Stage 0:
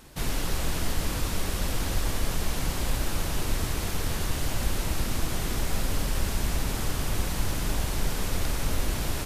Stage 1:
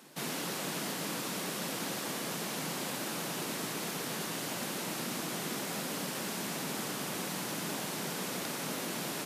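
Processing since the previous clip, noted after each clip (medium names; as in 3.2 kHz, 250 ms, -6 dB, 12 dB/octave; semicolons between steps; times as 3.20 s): steep high-pass 160 Hz 36 dB/octave; trim -3 dB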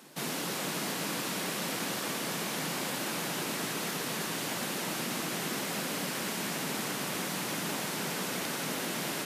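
band-passed feedback delay 315 ms, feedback 82%, band-pass 2.1 kHz, level -5.5 dB; trim +2 dB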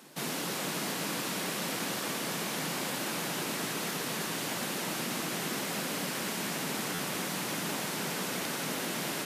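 buffer glitch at 6.94 s, samples 512, times 3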